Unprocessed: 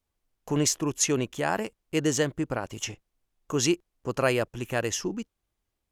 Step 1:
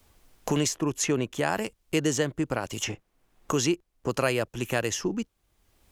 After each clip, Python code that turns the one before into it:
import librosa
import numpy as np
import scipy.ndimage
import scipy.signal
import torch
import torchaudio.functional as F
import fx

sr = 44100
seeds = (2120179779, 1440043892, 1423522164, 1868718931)

y = fx.band_squash(x, sr, depth_pct=70)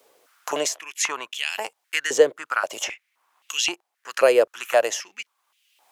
y = fx.filter_held_highpass(x, sr, hz=3.8, low_hz=480.0, high_hz=2800.0)
y = y * librosa.db_to_amplitude(2.5)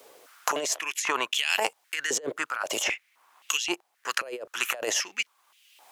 y = fx.over_compress(x, sr, threshold_db=-30.0, ratio=-1.0)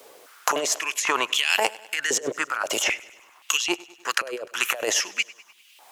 y = fx.echo_feedback(x, sr, ms=100, feedback_pct=58, wet_db=-21.0)
y = y * librosa.db_to_amplitude(4.0)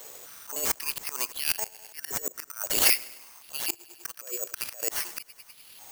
y = (np.kron(x[::6], np.eye(6)[0]) * 6)[:len(x)]
y = fx.auto_swell(y, sr, attack_ms=359.0)
y = y * librosa.db_to_amplitude(-3.5)